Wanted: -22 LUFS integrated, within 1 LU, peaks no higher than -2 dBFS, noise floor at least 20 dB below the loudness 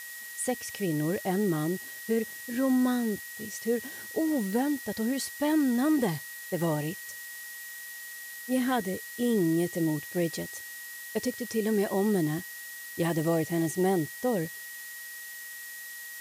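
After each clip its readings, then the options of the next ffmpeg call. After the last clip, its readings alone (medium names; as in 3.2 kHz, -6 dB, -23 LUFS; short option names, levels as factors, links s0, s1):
steady tone 1.9 kHz; tone level -42 dBFS; noise floor -42 dBFS; noise floor target -51 dBFS; loudness -30.5 LUFS; peak level -15.5 dBFS; loudness target -22.0 LUFS
-> -af "bandreject=f=1900:w=30"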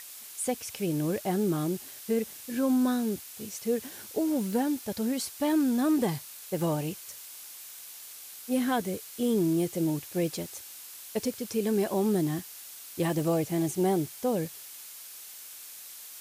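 steady tone not found; noise floor -46 dBFS; noise floor target -50 dBFS
-> -af "afftdn=nr=6:nf=-46"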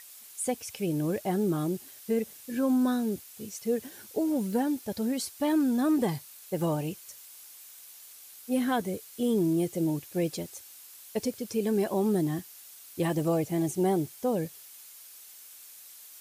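noise floor -50 dBFS; loudness -29.5 LUFS; peak level -16.0 dBFS; loudness target -22.0 LUFS
-> -af "volume=2.37"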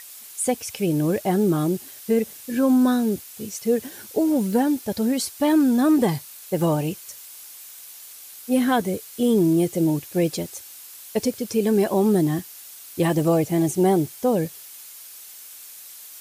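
loudness -22.0 LUFS; peak level -8.5 dBFS; noise floor -42 dBFS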